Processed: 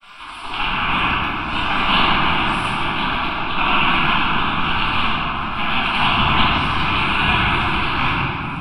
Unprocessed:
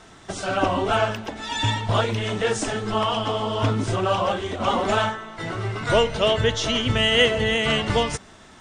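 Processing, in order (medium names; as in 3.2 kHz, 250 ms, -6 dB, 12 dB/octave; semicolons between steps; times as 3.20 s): rattle on loud lows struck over -27 dBFS, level -16 dBFS; spectral gate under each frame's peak -15 dB weak; resonant high shelf 3 kHz -11 dB, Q 1.5; upward compressor, threshold -40 dBFS; granulator, pitch spread up and down by 3 st; static phaser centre 1.9 kHz, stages 6; simulated room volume 170 m³, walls hard, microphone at 1.3 m; trim +8.5 dB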